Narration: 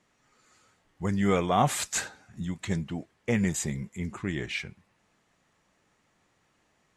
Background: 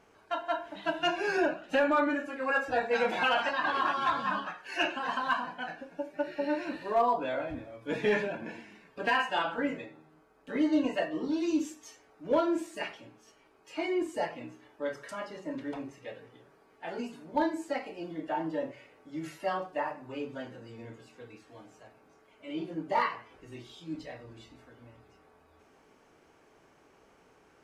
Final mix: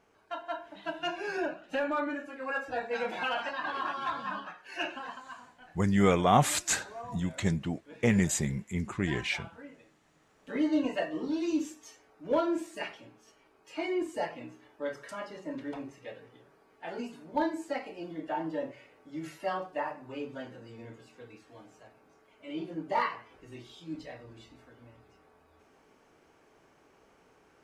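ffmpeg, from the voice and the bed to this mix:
-filter_complex "[0:a]adelay=4750,volume=1dB[a];[1:a]volume=11dB,afade=t=out:st=4.98:d=0.24:silence=0.251189,afade=t=in:st=10:d=0.5:silence=0.158489[b];[a][b]amix=inputs=2:normalize=0"

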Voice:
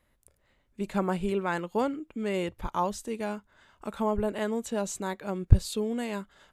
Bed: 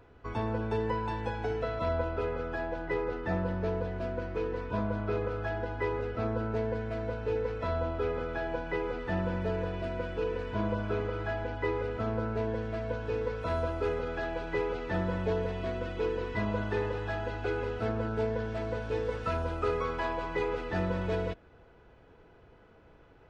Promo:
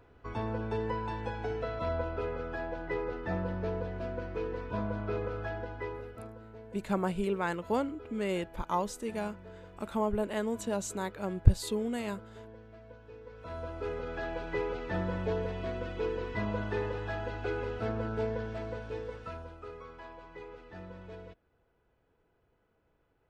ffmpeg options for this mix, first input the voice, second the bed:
-filter_complex "[0:a]adelay=5950,volume=-2.5dB[a];[1:a]volume=13dB,afade=t=out:st=5.39:d=0.98:silence=0.177828,afade=t=in:st=13.24:d=1.05:silence=0.16788,afade=t=out:st=18.27:d=1.32:silence=0.211349[b];[a][b]amix=inputs=2:normalize=0"

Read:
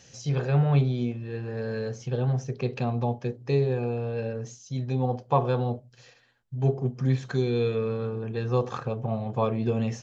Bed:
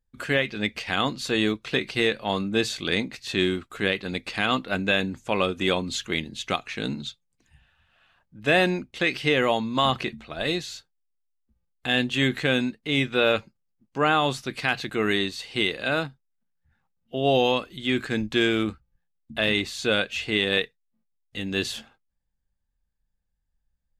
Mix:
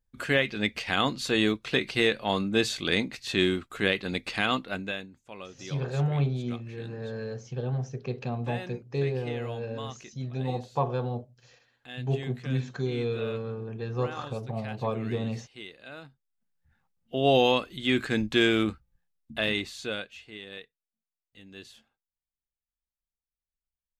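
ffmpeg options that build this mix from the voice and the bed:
-filter_complex "[0:a]adelay=5450,volume=-4.5dB[a];[1:a]volume=17.5dB,afade=t=out:st=4.34:d=0.74:silence=0.125893,afade=t=in:st=16.01:d=0.54:silence=0.11885,afade=t=out:st=18.96:d=1.27:silence=0.112202[b];[a][b]amix=inputs=2:normalize=0"

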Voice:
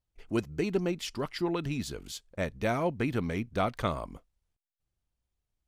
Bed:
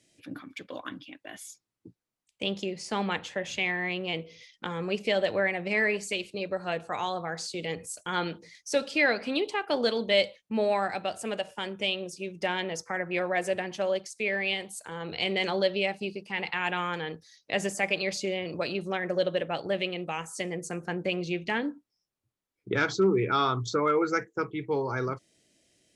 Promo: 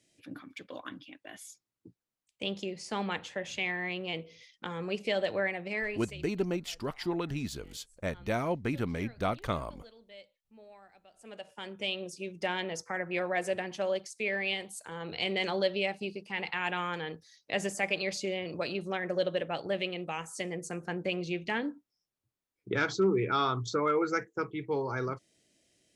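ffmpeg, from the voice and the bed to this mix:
-filter_complex "[0:a]adelay=5650,volume=-2dB[a];[1:a]volume=21dB,afade=t=out:st=5.43:d=0.95:silence=0.0630957,afade=t=in:st=11.11:d=0.95:silence=0.0562341[b];[a][b]amix=inputs=2:normalize=0"

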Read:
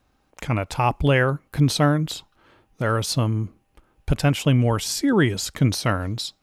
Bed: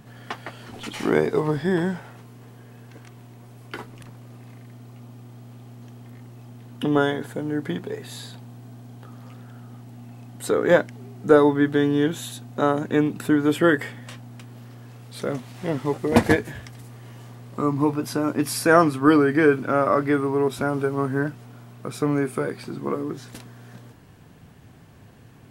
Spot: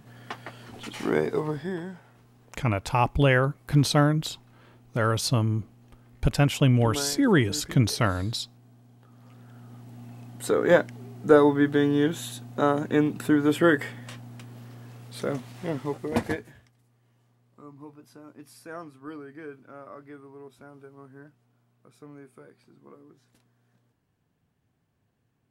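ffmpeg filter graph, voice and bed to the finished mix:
-filter_complex "[0:a]adelay=2150,volume=-2dB[a];[1:a]volume=6.5dB,afade=t=out:st=1.34:d=0.5:silence=0.375837,afade=t=in:st=9.08:d=0.96:silence=0.281838,afade=t=out:st=15.33:d=1.39:silence=0.0794328[b];[a][b]amix=inputs=2:normalize=0"

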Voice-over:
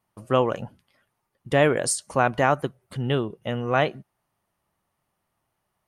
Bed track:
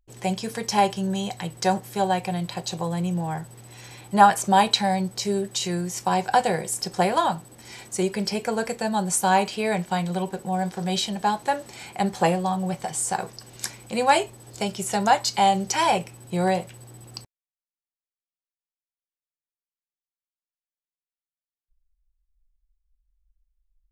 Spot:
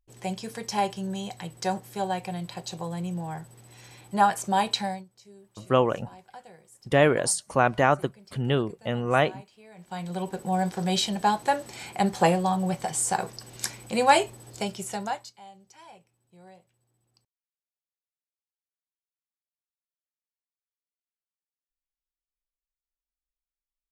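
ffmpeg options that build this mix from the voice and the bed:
-filter_complex "[0:a]adelay=5400,volume=-0.5dB[a];[1:a]volume=20.5dB,afade=t=out:st=4.84:d=0.21:silence=0.0944061,afade=t=in:st=9.75:d=0.77:silence=0.0473151,afade=t=out:st=14.3:d=1.04:silence=0.0354813[b];[a][b]amix=inputs=2:normalize=0"

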